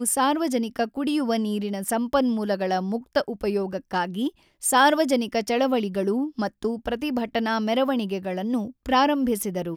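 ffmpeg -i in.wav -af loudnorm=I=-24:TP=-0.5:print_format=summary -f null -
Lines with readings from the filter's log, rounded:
Input Integrated:    -24.5 LUFS
Input True Peak:      -7.9 dBTP
Input LRA:             1.8 LU
Input Threshold:     -34.5 LUFS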